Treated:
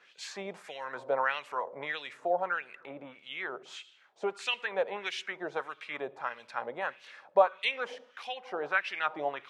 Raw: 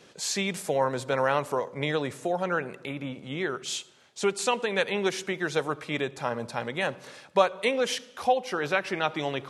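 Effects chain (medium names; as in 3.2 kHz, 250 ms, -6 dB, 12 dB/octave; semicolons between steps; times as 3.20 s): LFO band-pass sine 1.6 Hz 630–3000 Hz; trim +2.5 dB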